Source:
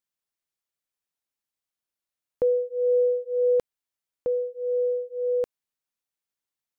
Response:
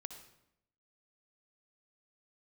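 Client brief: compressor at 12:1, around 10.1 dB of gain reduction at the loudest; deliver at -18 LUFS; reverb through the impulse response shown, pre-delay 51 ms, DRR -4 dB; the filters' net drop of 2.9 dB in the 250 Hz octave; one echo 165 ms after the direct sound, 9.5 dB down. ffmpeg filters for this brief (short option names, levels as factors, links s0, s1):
-filter_complex "[0:a]equalizer=f=250:t=o:g=-4.5,acompressor=threshold=0.0316:ratio=12,aecho=1:1:165:0.335,asplit=2[s0][s1];[1:a]atrim=start_sample=2205,adelay=51[s2];[s1][s2]afir=irnorm=-1:irlink=0,volume=2.51[s3];[s0][s3]amix=inputs=2:normalize=0,volume=3.16"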